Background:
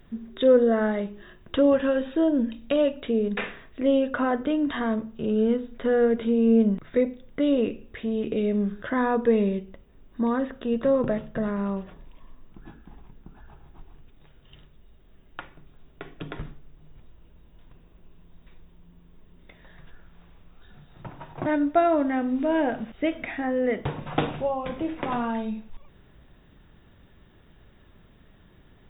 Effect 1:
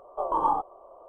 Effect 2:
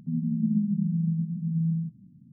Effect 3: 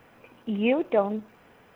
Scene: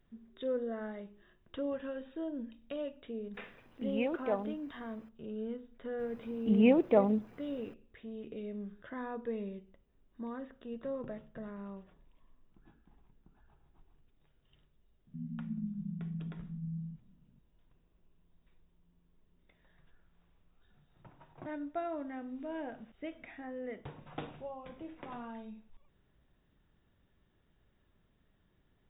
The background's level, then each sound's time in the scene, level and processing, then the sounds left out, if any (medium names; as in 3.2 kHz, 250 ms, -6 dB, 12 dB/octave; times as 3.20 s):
background -17 dB
3.34 s: add 3 -11 dB + bass shelf 92 Hz +11.5 dB
5.99 s: add 3 -7 dB + bass shelf 390 Hz +11 dB
15.07 s: add 2 -13.5 dB
not used: 1